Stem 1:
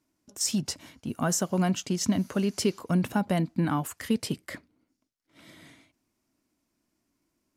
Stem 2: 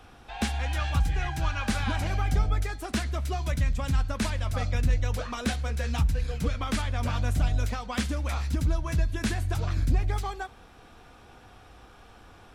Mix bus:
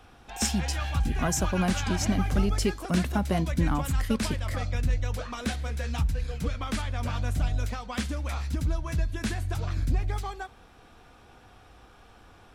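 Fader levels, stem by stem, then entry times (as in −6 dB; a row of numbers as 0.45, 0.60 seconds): −1.5, −2.0 decibels; 0.00, 0.00 seconds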